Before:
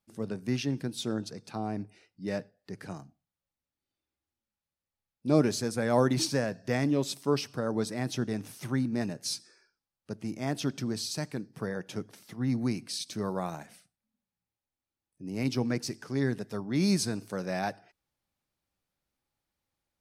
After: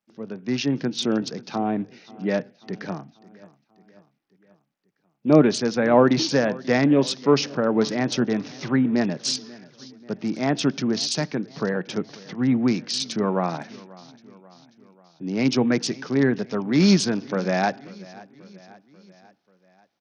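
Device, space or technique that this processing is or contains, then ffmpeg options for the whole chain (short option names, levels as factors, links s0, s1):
Bluetooth headset: -filter_complex "[0:a]deesser=0.6,asettb=1/sr,asplit=3[s0][s1][s2];[s0]atrim=end=2.974[s3];[s1]atrim=start=2.97:end=5.64,asetpts=PTS-STARTPTS,afade=t=in:d=0.004:c=qsin,afade=t=out:st=2.666:d=0.004:c=qsin,highshelf=f=6500:g=-5.5[s4];[s2]atrim=start=5.636[s5];[s3][s4]acrossfade=d=0.004:c1=hsin:c2=qsin[s6];[s6][s5]acrossfade=d=0.004:c1=qsin:c2=hsin,highpass=f=150:w=0.5412,highpass=f=150:w=1.3066,aecho=1:1:538|1076|1614|2152:0.0841|0.0471|0.0264|0.0148,dynaudnorm=f=120:g=9:m=3.16,aresample=16000,aresample=44100" -ar 48000 -c:a sbc -b:a 64k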